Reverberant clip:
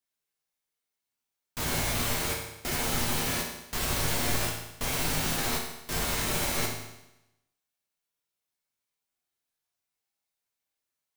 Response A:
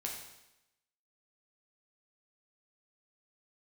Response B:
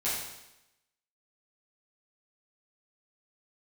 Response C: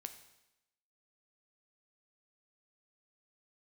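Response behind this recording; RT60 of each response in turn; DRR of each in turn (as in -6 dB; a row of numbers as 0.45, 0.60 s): A; 0.90, 0.90, 0.90 s; -1.5, -11.0, 7.5 dB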